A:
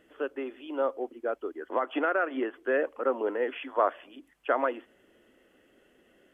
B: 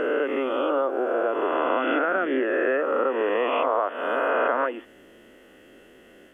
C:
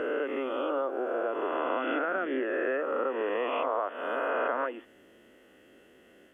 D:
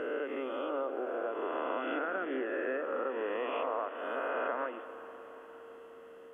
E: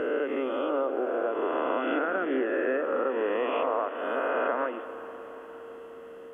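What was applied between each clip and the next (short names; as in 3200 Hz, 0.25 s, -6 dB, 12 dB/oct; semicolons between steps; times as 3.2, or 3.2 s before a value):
spectral swells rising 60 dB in 1.98 s; compressor 4:1, threshold -29 dBFS, peak gain reduction 11 dB; gain +8 dB
HPF 49 Hz; gain -6.5 dB
whine 460 Hz -44 dBFS; reverb RT60 5.7 s, pre-delay 0.126 s, DRR 11 dB; gain -5 dB
low shelf 470 Hz +4.5 dB; gain +5 dB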